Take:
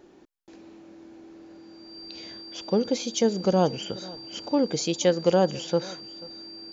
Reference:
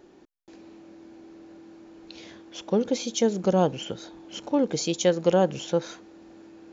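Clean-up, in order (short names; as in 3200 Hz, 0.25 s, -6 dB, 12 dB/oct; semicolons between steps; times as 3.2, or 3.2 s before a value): notch 4700 Hz, Q 30; inverse comb 0.487 s -21 dB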